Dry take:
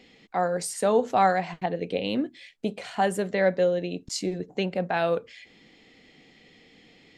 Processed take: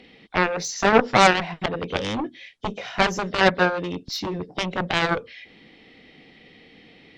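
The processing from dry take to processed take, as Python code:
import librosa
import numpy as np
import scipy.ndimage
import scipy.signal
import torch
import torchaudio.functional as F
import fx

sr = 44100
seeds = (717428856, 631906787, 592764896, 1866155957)

y = fx.freq_compress(x, sr, knee_hz=3000.0, ratio=1.5)
y = fx.cheby_harmonics(y, sr, harmonics=(7,), levels_db=(-11,), full_scale_db=-8.5)
y = F.gain(torch.from_numpy(y), 5.5).numpy()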